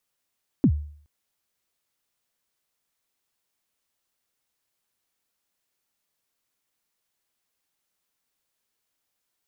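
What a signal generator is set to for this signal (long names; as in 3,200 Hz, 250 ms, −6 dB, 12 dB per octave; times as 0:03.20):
synth kick length 0.42 s, from 320 Hz, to 74 Hz, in 72 ms, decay 0.54 s, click off, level −11.5 dB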